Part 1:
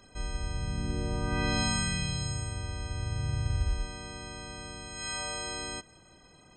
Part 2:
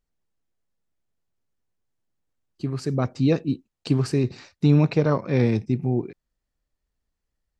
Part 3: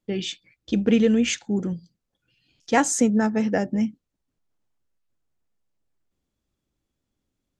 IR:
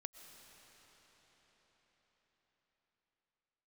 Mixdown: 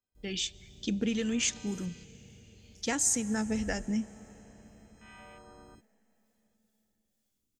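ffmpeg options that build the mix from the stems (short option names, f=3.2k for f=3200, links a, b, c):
-filter_complex "[0:a]afwtdn=0.0141,volume=-12dB,afade=t=in:st=3.43:d=0.32:silence=0.316228[a];[2:a]crystalizer=i=4:c=0,adelay=150,volume=-7dB,asplit=2[b][c];[c]volume=-12dB[d];[b]acrossover=split=680[e][f];[e]aeval=exprs='val(0)*(1-0.5/2+0.5/2*cos(2*PI*2*n/s))':c=same[g];[f]aeval=exprs='val(0)*(1-0.5/2-0.5/2*cos(2*PI*2*n/s))':c=same[h];[g][h]amix=inputs=2:normalize=0,acompressor=threshold=-27dB:ratio=6,volume=0dB[i];[3:a]atrim=start_sample=2205[j];[d][j]afir=irnorm=-1:irlink=0[k];[a][i][k]amix=inputs=3:normalize=0"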